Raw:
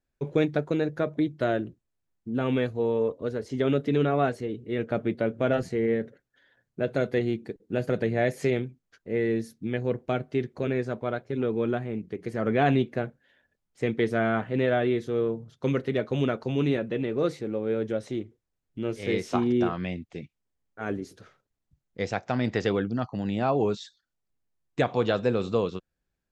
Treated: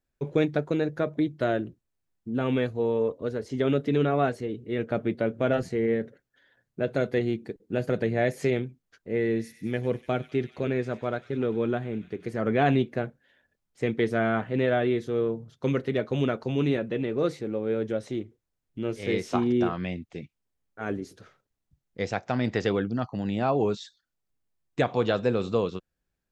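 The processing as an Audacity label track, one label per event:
9.130000	12.320000	feedback echo behind a high-pass 98 ms, feedback 78%, high-pass 2.6 kHz, level -12 dB

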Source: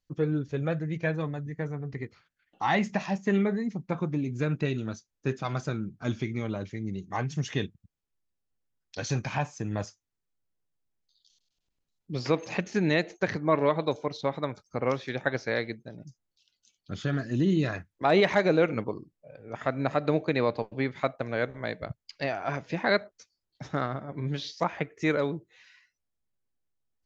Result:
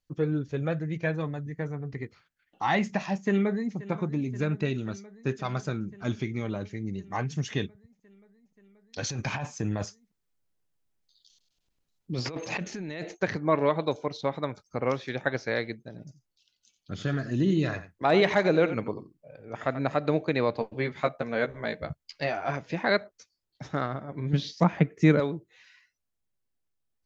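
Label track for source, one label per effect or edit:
3.150000	3.750000	echo throw 530 ms, feedback 80%, level -17.5 dB
6.660000	7.270000	band-stop 3.4 kHz
9.030000	13.150000	compressor with a negative ratio -32 dBFS
15.840000	19.800000	delay 87 ms -13 dB
20.590000	22.510000	doubling 13 ms -5 dB
24.330000	25.200000	peaking EQ 180 Hz +14 dB 1.5 oct

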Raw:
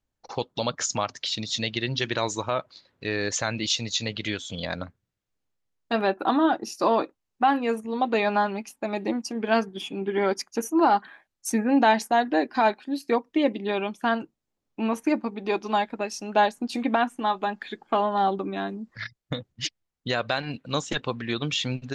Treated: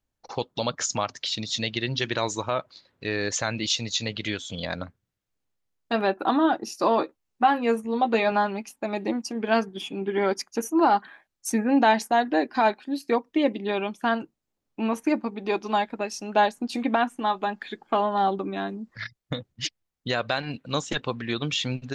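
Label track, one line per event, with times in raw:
6.960000	8.320000	doubling 13 ms -7.5 dB

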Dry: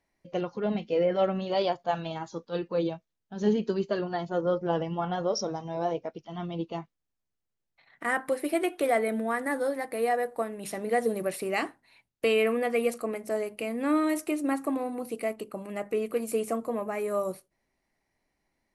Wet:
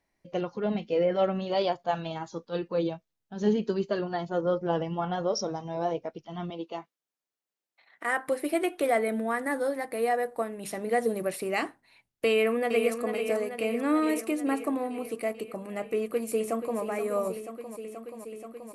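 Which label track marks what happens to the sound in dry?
6.500000	8.280000	high-pass 340 Hz
12.260000	12.920000	echo throw 440 ms, feedback 70%, level -7.5 dB
15.860000	16.800000	echo throw 480 ms, feedback 85%, level -10 dB

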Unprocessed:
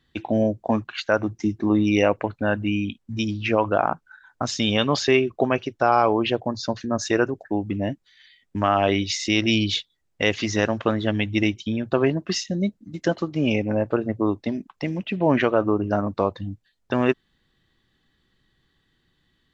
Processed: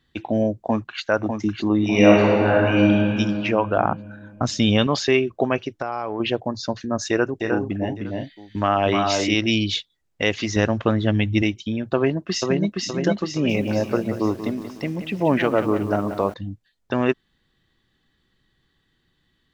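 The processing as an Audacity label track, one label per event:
0.560000	1.070000	echo throw 600 ms, feedback 40%, level -6 dB
1.770000	2.990000	reverb throw, RT60 2.7 s, DRR -4.5 dB
3.770000	4.870000	bass shelf 310 Hz +8 dB
5.680000	6.200000	compression 12:1, threshold -21 dBFS
7.090000	9.350000	multi-tap echo 307/344/862 ms -4/-9/-19.5 dB
10.560000	11.420000	bass shelf 170 Hz +9 dB
11.950000	12.750000	echo throw 470 ms, feedback 50%, level -2 dB
13.310000	16.340000	bit-crushed delay 182 ms, feedback 55%, word length 7-bit, level -10.5 dB

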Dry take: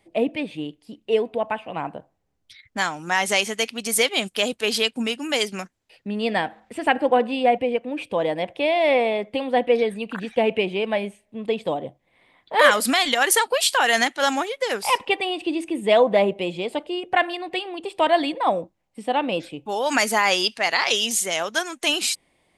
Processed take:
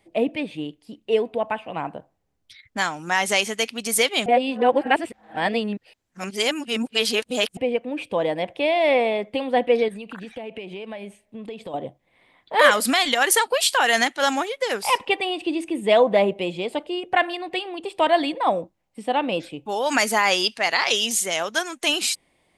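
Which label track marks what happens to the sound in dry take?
4.260000	7.570000	reverse
9.880000	11.740000	compression 5:1, threshold -32 dBFS

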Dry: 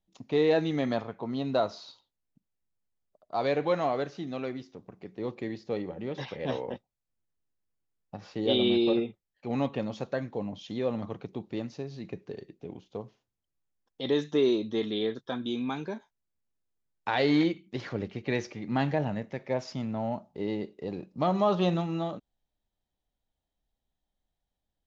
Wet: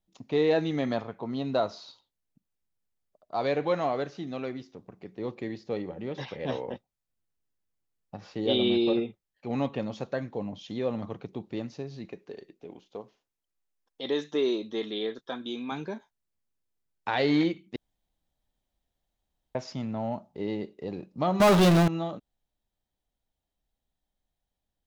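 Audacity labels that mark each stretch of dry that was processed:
12.050000	15.720000	peaking EQ 100 Hz -14 dB 1.8 oct
17.760000	19.550000	room tone
21.400000	21.880000	power-law waveshaper exponent 0.35

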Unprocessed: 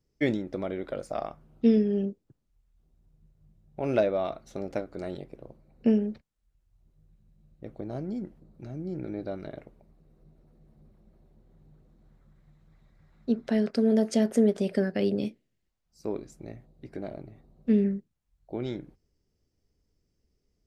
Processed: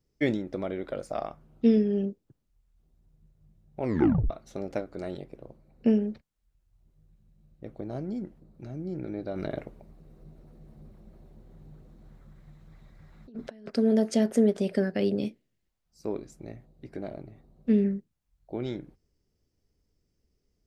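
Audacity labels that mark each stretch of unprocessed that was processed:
3.820000	3.820000	tape stop 0.48 s
9.330000	13.700000	compressor with a negative ratio -40 dBFS

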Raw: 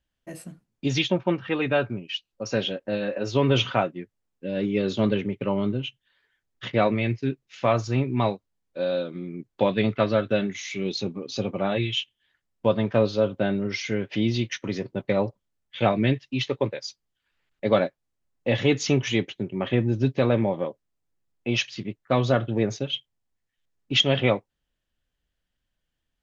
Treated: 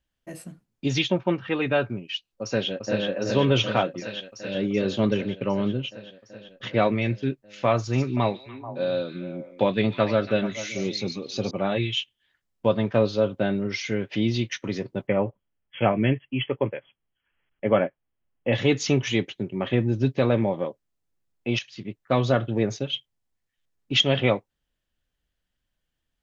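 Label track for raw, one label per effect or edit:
2.420000	3.060000	echo throw 380 ms, feedback 80%, level -4 dB
4.000000	4.550000	tilt shelf lows -5.5 dB, about 1.1 kHz
7.730000	11.510000	repeats whose band climbs or falls 145 ms, band-pass from 5.4 kHz, each repeat -1.4 oct, level -5 dB
15.070000	18.530000	brick-wall FIR low-pass 3.4 kHz
21.590000	21.990000	fade in, from -13 dB

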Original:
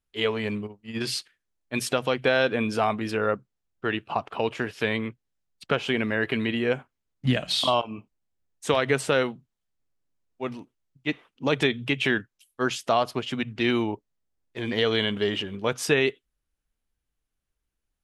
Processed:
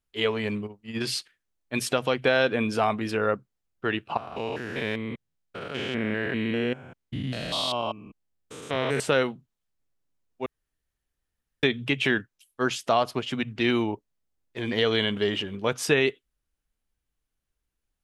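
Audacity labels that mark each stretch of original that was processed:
4.170000	9.000000	spectrogram pixelated in time every 200 ms
10.460000	11.630000	room tone

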